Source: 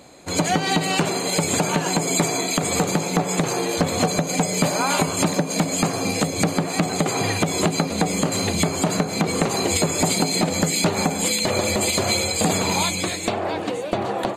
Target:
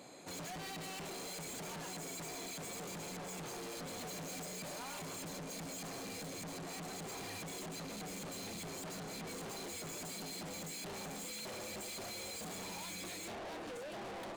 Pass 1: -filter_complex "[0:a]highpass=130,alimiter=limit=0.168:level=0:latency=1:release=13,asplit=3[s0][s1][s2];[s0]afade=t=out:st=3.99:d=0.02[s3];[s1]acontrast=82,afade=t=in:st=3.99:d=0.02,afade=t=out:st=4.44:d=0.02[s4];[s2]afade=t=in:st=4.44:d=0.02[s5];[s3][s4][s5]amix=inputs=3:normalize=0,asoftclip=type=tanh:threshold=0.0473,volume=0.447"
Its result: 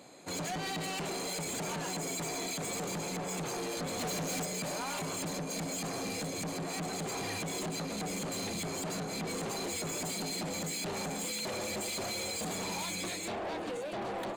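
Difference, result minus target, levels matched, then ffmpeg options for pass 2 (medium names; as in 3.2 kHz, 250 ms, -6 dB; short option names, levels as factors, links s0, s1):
saturation: distortion -4 dB
-filter_complex "[0:a]highpass=130,alimiter=limit=0.168:level=0:latency=1:release=13,asplit=3[s0][s1][s2];[s0]afade=t=out:st=3.99:d=0.02[s3];[s1]acontrast=82,afade=t=in:st=3.99:d=0.02,afade=t=out:st=4.44:d=0.02[s4];[s2]afade=t=in:st=4.44:d=0.02[s5];[s3][s4][s5]amix=inputs=3:normalize=0,asoftclip=type=tanh:threshold=0.0141,volume=0.447"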